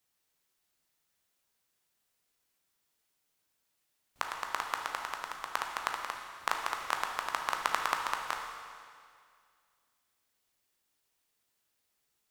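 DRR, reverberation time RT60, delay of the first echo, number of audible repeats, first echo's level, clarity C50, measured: 1.5 dB, 2.1 s, no echo, no echo, no echo, 3.0 dB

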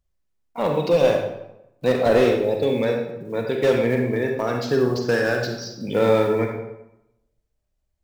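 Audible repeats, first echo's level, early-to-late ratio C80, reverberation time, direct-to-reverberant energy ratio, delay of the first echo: no echo, no echo, 6.5 dB, 0.90 s, 2.0 dB, no echo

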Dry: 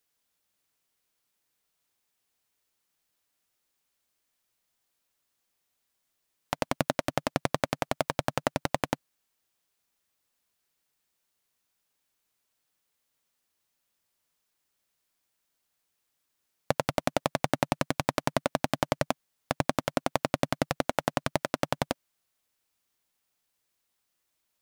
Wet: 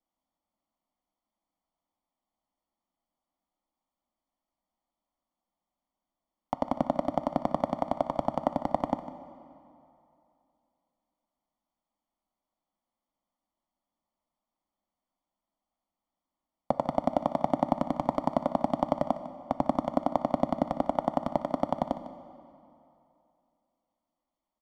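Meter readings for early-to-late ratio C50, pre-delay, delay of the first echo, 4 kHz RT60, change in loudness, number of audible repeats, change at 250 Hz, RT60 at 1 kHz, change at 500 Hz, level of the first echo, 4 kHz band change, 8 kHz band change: 11.0 dB, 3 ms, 152 ms, 2.1 s, +0.5 dB, 1, +2.5 dB, 2.8 s, +1.0 dB, -15.0 dB, -14.5 dB, under -15 dB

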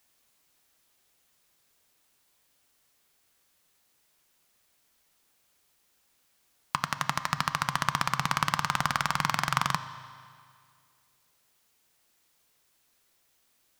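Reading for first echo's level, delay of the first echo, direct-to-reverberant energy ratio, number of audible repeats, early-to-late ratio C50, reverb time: no echo, no echo, 11.0 dB, no echo, 12.5 dB, 2.1 s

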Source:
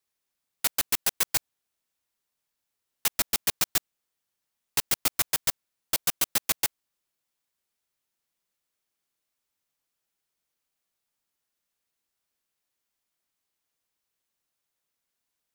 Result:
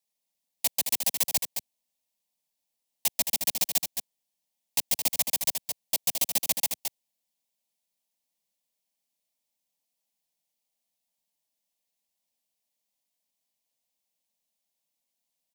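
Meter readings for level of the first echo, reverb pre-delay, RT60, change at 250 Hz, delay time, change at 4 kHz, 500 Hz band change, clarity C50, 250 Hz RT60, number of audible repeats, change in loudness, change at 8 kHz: -6.5 dB, no reverb, no reverb, -2.0 dB, 218 ms, -0.5 dB, -1.0 dB, no reverb, no reverb, 1, 0.0 dB, +0.5 dB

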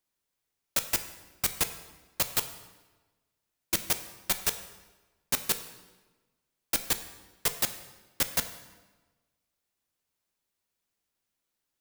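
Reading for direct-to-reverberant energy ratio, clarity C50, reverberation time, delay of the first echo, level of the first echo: 8.5 dB, 11.5 dB, 1.2 s, no echo, no echo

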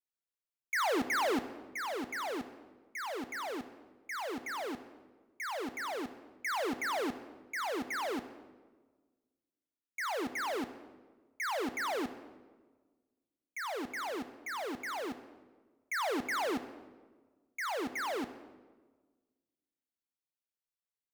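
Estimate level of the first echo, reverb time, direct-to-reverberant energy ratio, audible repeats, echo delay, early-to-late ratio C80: no echo, 1.4 s, 10.5 dB, no echo, no echo, 14.0 dB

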